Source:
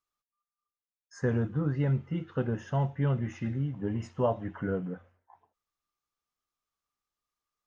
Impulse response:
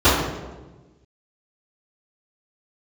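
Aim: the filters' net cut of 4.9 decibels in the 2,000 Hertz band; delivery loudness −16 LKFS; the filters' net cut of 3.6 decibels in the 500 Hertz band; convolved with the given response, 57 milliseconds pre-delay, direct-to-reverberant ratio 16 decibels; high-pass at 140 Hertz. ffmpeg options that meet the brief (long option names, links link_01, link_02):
-filter_complex "[0:a]highpass=140,equalizer=frequency=500:width_type=o:gain=-4,equalizer=frequency=2000:width_type=o:gain=-6.5,asplit=2[link_01][link_02];[1:a]atrim=start_sample=2205,adelay=57[link_03];[link_02][link_03]afir=irnorm=-1:irlink=0,volume=-41.5dB[link_04];[link_01][link_04]amix=inputs=2:normalize=0,volume=18.5dB"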